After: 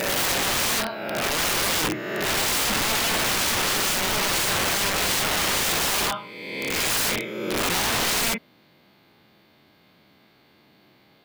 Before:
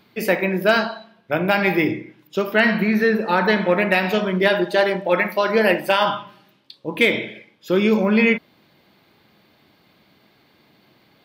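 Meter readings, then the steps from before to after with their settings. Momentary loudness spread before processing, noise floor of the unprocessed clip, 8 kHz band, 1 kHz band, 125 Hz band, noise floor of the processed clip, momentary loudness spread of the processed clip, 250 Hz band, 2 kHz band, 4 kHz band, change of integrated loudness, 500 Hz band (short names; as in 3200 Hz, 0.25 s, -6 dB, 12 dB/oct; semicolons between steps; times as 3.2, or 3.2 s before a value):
10 LU, -59 dBFS, n/a, -3.5 dB, -6.5 dB, -58 dBFS, 6 LU, -11.5 dB, -4.5 dB, +5.5 dB, -3.0 dB, -11.0 dB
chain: spectral swells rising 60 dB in 1.61 s; wrapped overs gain 14.5 dB; gain -4 dB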